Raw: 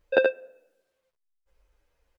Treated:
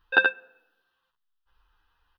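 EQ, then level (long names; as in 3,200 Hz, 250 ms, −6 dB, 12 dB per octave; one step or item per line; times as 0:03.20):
flat-topped bell 1,500 Hz +10.5 dB 2.8 octaves
mains-hum notches 50/100/150/200 Hz
phaser with its sweep stopped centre 2,200 Hz, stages 6
0.0 dB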